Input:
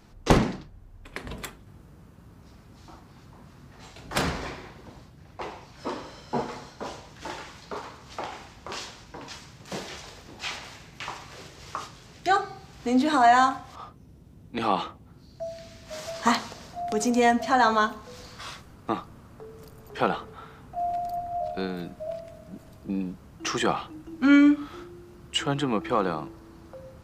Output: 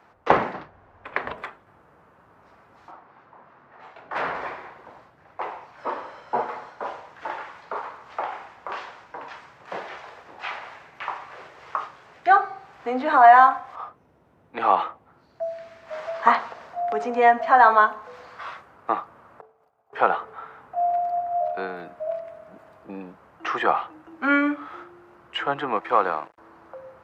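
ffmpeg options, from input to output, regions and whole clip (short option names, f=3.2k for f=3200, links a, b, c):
-filter_complex "[0:a]asettb=1/sr,asplit=3[a][b][c];[a]atrim=end=0.544[d];[b]atrim=start=0.54:end=1.32,asetpts=PTS-STARTPTS,afade=t=in:d=0.004:c=qsin,afade=t=out:st=0.776:d=0.004:c=qsin,lowpass=5.6k,acontrast=85[e];[c]atrim=start=1.316[f];[d][e]acrossfade=d=0.004:c1=hsin:c2=qsin[g];[g][f]acrossfade=d=0.004:c1=qsin:c2=hsin,asettb=1/sr,asplit=3[h][i][j];[h]atrim=end=2.914[k];[i]atrim=start=2.91:end=4.35,asetpts=PTS-STARTPTS,afade=t=in:d=0.004:c=qsin,afade=t=out:st=1.436:d=0.004:c=qsin,lowshelf=f=80:g=-12,aeval=exprs='0.0668*(abs(mod(val(0)/0.0668+3,4)-2)-1)':c=same,adynamicsmooth=sensitivity=7:basefreq=4k[l];[j]atrim=start=4.346[m];[k][l]acrossfade=d=0.004:c1=hsin:c2=qsin[n];[n][m]acrossfade=d=0.004:c1=qsin:c2=hsin,asettb=1/sr,asplit=3[o][p][q];[o]atrim=end=19.414[r];[p]atrim=start=19.41:end=19.93,asetpts=PTS-STARTPTS,afade=t=in:d=0.004:c=qsin,afade=t=out:st=0.516:d=0.004:c=qsin,bandreject=f=1.8k:w=14,agate=range=-33dB:threshold=-34dB:ratio=3:release=100:detection=peak,equalizer=f=740:t=o:w=0.5:g=12[s];[q]atrim=start=19.926[t];[r][s]acrossfade=d=0.004:c1=hsin:c2=qsin[u];[u][t]acrossfade=d=0.004:c1=qsin:c2=hsin,asettb=1/sr,asplit=3[v][w][x];[v]atrim=end=25.764[y];[w]atrim=start=25.76:end=26.38,asetpts=PTS-STARTPTS,afade=t=in:d=0.004:c=qsin,afade=t=out:st=0.616:d=0.004:c=qsin,lowpass=9.6k,highshelf=f=3.6k:g=9.5,aeval=exprs='sgn(val(0))*max(abs(val(0))-0.00944,0)':c=same[z];[x]atrim=start=26.376[aa];[y][z]acrossfade=d=0.004:c1=hsin:c2=qsin[ab];[ab][aa]acrossfade=d=0.004:c1=qsin:c2=hsin,acrossover=split=5400[ac][ad];[ad]acompressor=threshold=-56dB:ratio=4:attack=1:release=60[ae];[ac][ae]amix=inputs=2:normalize=0,highpass=77,acrossover=split=510 2100:gain=0.1 1 0.0891[af][ag][ah];[af][ag][ah]amix=inputs=3:normalize=0,volume=8dB"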